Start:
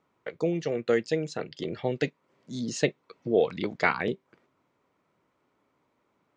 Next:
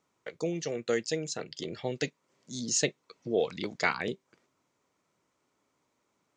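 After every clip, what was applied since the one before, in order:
parametric band 6,800 Hz +15 dB 1.4 octaves
level −5 dB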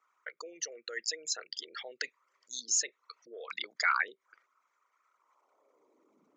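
spectral envelope exaggerated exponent 2
brickwall limiter −22.5 dBFS, peak gain reduction 11 dB
high-pass filter sweep 1,400 Hz → 220 Hz, 0:05.08–0:06.22
level +3.5 dB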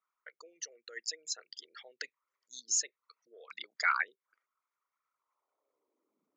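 expander for the loud parts 1.5 to 1, over −53 dBFS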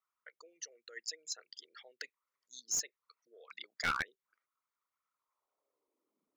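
wavefolder on the positive side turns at −23.5 dBFS
level −3.5 dB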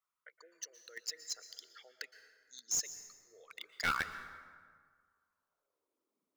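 in parallel at −9 dB: bit reduction 6 bits
on the sum: dense smooth reverb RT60 1.8 s, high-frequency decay 0.55×, pre-delay 105 ms, DRR 11 dB
level −2 dB

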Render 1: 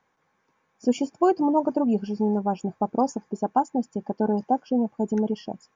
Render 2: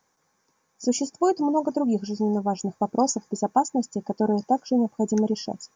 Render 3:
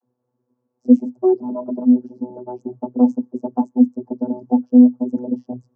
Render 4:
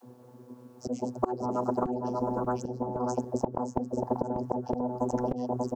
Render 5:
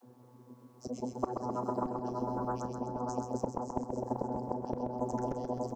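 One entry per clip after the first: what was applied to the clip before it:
high shelf with overshoot 4,100 Hz +11 dB, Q 1.5; speech leveller within 4 dB 2 s
octave-band graphic EQ 250/500/2,000/4,000 Hz +6/+4/−7/−7 dB; channel vocoder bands 32, saw 124 Hz; tilt shelving filter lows +9 dB, about 1,200 Hz; level −5 dB
volume swells 363 ms; single-tap delay 588 ms −8 dB; every bin compressed towards the loudest bin 4 to 1
repeating echo 130 ms, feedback 54%, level −5.5 dB; on a send at −15 dB: convolution reverb, pre-delay 3 ms; on the sum: level −5.5 dB

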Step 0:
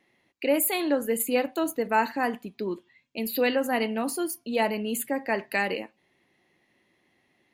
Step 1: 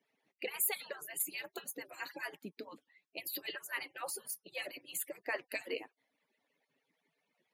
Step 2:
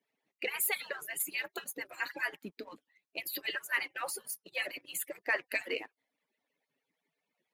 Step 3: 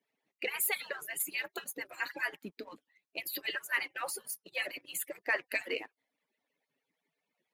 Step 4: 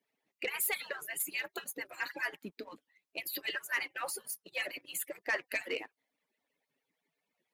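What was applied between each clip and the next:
harmonic-percussive split with one part muted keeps percussive; high-pass filter 140 Hz 24 dB per octave; level −6 dB
leveller curve on the samples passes 1; dynamic equaliser 1,800 Hz, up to +7 dB, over −51 dBFS, Q 1; level −2 dB
no processing that can be heard
soft clipping −23.5 dBFS, distortion −19 dB

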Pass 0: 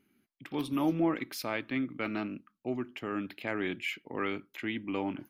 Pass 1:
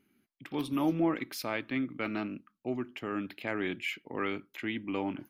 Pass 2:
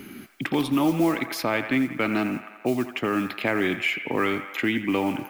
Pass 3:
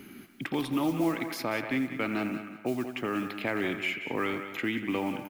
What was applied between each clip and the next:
no processing that can be heard
delay with a band-pass on its return 85 ms, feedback 54%, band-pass 1,300 Hz, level −9 dB; noise that follows the level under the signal 29 dB; multiband upward and downward compressor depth 70%; level +9 dB
repeating echo 188 ms, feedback 25%, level −11.5 dB; level −6.5 dB

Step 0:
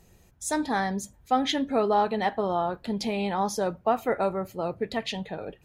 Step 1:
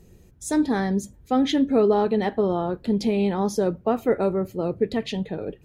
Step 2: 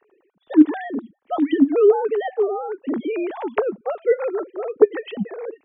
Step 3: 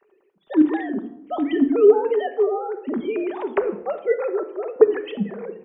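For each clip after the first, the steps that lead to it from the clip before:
low shelf with overshoot 550 Hz +7.5 dB, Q 1.5; level −1 dB
three sine waves on the formant tracks; level +2.5 dB
rectangular room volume 2,100 cubic metres, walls furnished, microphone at 1.2 metres; wow of a warped record 45 rpm, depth 100 cents; level −1.5 dB

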